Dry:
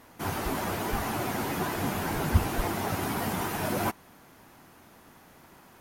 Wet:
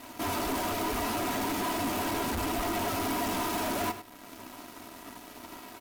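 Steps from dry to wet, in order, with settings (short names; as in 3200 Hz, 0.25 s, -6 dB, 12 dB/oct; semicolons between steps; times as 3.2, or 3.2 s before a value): switching dead time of 0.062 ms; HPF 94 Hz 6 dB/oct; bell 1700 Hz -8 dB 0.29 oct; comb 3.1 ms, depth 76%; in parallel at -2 dB: compressor, threshold -46 dBFS, peak gain reduction 25.5 dB; on the sum: sample leveller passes 3; soft clip -24 dBFS, distortion -10 dB; echo 0.103 s -12 dB; on a send at -10 dB: reverb RT60 0.45 s, pre-delay 4 ms; on the sum: gain -5.5 dB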